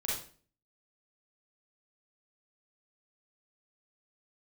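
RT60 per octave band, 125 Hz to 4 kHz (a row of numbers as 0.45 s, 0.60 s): 0.60 s, 0.55 s, 0.45 s, 0.40 s, 0.40 s, 0.35 s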